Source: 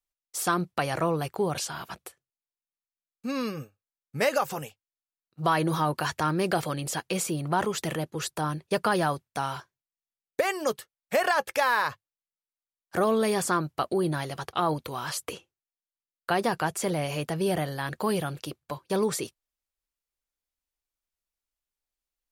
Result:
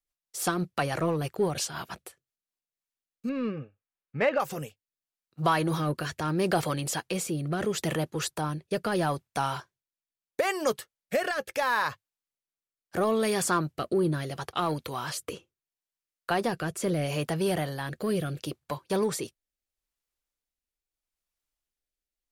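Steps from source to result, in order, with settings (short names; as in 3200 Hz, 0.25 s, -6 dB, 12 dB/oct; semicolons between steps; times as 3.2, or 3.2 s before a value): 3.29–4.4 LPF 2900 Hz 24 dB/oct; in parallel at -9.5 dB: hard clip -28.5 dBFS, distortion -6 dB; on the sum: rotary speaker horn 6 Hz, later 0.75 Hz, at 2.11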